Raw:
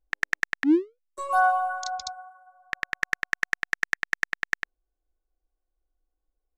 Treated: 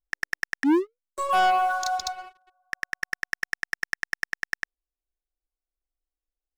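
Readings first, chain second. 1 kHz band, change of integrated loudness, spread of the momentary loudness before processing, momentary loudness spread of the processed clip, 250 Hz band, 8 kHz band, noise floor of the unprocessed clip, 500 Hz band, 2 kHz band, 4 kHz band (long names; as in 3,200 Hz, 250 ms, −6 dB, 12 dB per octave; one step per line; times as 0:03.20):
+2.0 dB, 0.0 dB, 15 LU, 13 LU, 0.0 dB, +2.5 dB, −83 dBFS, +2.0 dB, −2.0 dB, +3.5 dB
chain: leveller curve on the samples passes 3
level −6 dB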